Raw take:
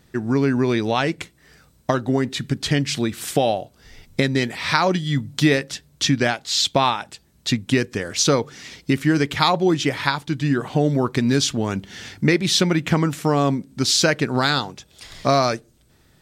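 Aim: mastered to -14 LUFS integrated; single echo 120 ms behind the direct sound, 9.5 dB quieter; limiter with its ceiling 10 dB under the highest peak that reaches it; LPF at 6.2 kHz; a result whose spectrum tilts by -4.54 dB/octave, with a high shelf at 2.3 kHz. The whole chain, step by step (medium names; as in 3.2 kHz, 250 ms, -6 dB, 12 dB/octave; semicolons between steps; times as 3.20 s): low-pass 6.2 kHz; treble shelf 2.3 kHz +3 dB; peak limiter -10.5 dBFS; delay 120 ms -9.5 dB; trim +8 dB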